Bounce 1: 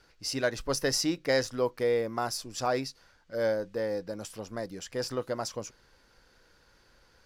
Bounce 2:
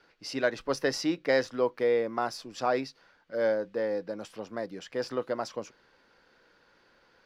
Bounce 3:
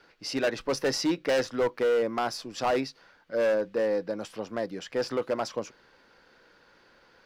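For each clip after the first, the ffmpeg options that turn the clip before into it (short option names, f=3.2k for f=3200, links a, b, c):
-filter_complex "[0:a]acrossover=split=160 4300:gain=0.158 1 0.178[a][b][c];[a][b][c]amix=inputs=3:normalize=0,volume=1.5dB"
-af "asoftclip=type=hard:threshold=-25dB,volume=4dB"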